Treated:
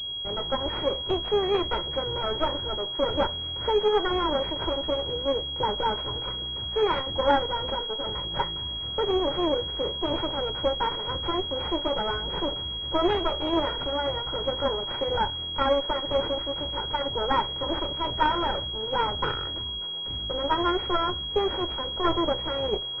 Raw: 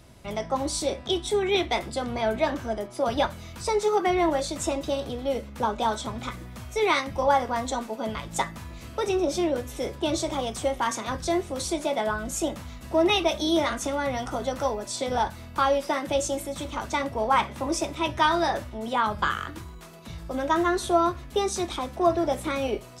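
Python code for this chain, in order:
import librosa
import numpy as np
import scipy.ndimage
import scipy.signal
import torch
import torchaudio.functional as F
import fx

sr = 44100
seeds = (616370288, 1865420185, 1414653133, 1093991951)

y = fx.lower_of_two(x, sr, delay_ms=2.1)
y = fx.pwm(y, sr, carrier_hz=3300.0)
y = y * 10.0 ** (1.5 / 20.0)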